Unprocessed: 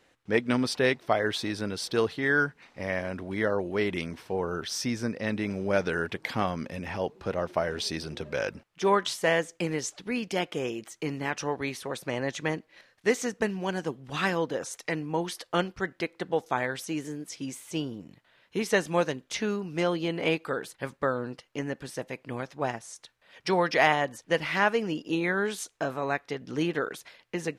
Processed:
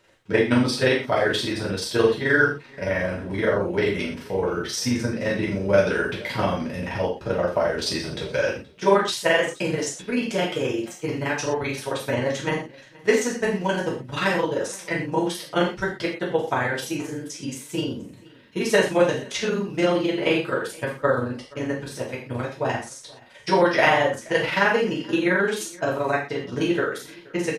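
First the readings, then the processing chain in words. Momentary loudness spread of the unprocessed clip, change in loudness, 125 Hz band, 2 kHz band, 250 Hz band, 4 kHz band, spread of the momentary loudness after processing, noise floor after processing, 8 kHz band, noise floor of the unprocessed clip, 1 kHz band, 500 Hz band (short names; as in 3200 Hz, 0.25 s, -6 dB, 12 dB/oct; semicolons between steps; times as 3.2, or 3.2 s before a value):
10 LU, +6.0 dB, +6.0 dB, +5.5 dB, +5.5 dB, +5.5 dB, 10 LU, -47 dBFS, +5.0 dB, -67 dBFS, +4.5 dB, +6.5 dB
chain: AM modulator 23 Hz, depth 80%; on a send: echo 0.475 s -23.5 dB; on the sum: non-linear reverb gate 0.15 s falling, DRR -5.5 dB; gain +3 dB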